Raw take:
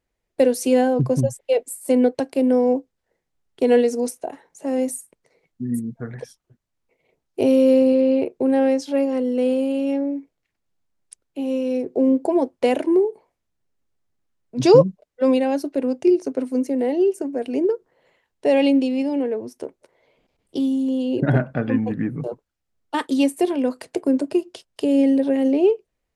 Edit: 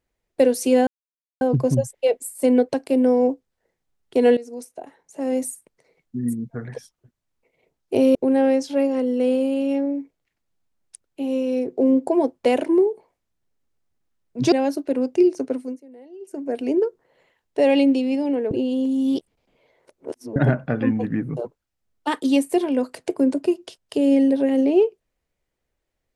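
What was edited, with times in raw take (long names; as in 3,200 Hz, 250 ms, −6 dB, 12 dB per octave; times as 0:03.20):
0:00.87: splice in silence 0.54 s
0:03.83–0:04.95: fade in, from −18 dB
0:07.61–0:08.33: remove
0:14.70–0:15.39: remove
0:16.35–0:17.39: duck −23 dB, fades 0.32 s
0:19.38–0:21.23: reverse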